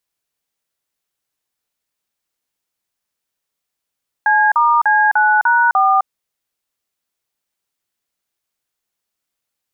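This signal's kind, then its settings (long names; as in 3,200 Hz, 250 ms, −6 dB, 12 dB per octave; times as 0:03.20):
touch tones "C*C9#4", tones 258 ms, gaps 40 ms, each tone −12.5 dBFS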